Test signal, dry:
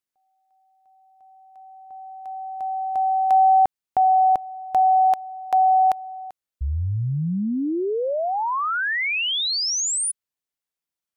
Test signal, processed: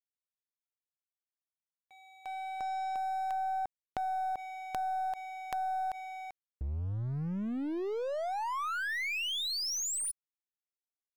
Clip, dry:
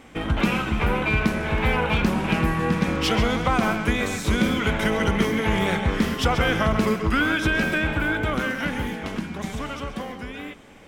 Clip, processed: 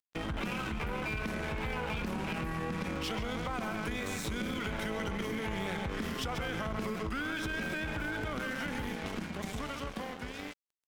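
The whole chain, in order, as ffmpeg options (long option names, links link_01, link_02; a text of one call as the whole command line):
ffmpeg -i in.wav -af "aeval=exprs='sgn(val(0))*max(abs(val(0))-0.0133,0)':channel_layout=same,acompressor=threshold=-34dB:ratio=8:attack=6.1:release=27:knee=6:detection=rms,aeval=exprs='0.15*(cos(1*acos(clip(val(0)/0.15,-1,1)))-cos(1*PI/2))+0.0075*(cos(6*acos(clip(val(0)/0.15,-1,1)))-cos(6*PI/2))':channel_layout=same" out.wav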